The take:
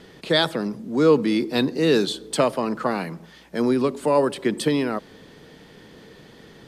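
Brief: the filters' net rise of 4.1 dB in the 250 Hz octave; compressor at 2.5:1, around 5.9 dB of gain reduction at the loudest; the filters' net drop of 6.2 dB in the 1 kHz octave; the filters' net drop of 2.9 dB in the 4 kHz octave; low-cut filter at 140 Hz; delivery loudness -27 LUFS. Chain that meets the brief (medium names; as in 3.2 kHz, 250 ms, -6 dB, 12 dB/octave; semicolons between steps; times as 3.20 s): high-pass 140 Hz; peaking EQ 250 Hz +6 dB; peaking EQ 1 kHz -8 dB; peaking EQ 4 kHz -3 dB; compression 2.5:1, threshold -20 dBFS; trim -2.5 dB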